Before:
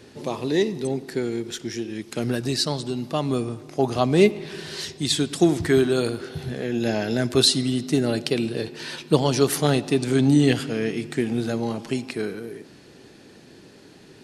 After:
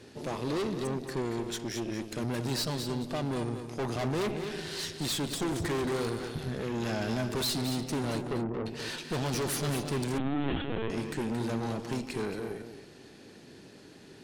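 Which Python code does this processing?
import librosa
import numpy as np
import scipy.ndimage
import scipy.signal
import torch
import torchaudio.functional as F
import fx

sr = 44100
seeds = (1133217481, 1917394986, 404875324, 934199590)

y = fx.lowpass(x, sr, hz=1100.0, slope=24, at=(8.21, 8.66))
y = fx.tube_stage(y, sr, drive_db=29.0, bias=0.7)
y = y + 10.0 ** (-8.5 / 20.0) * np.pad(y, (int(224 * sr / 1000.0), 0))[:len(y)]
y = fx.lpc_vocoder(y, sr, seeds[0], excitation='pitch_kept', order=16, at=(10.18, 10.9))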